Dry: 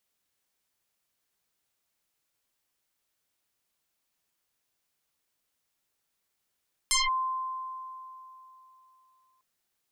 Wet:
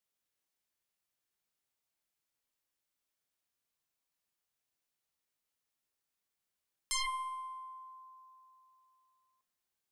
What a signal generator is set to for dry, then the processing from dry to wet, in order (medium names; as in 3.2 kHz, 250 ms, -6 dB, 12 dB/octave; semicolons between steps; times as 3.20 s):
FM tone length 2.50 s, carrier 1.04 kHz, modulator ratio 1.01, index 9.1, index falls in 0.18 s linear, decay 3.22 s, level -21 dB
feedback comb 66 Hz, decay 1.1 s, harmonics all, mix 70%